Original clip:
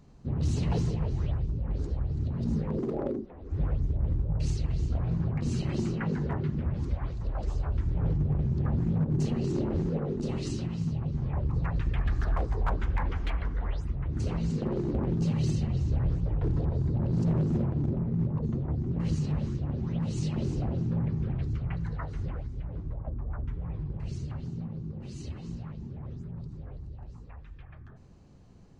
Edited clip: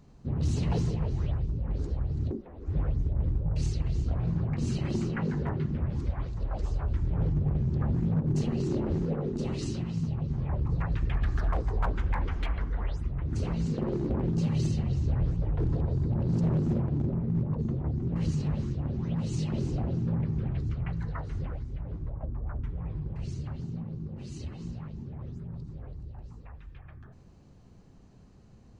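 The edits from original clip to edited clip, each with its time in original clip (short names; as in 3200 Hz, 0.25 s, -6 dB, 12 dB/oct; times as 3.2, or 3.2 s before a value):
2.31–3.15 cut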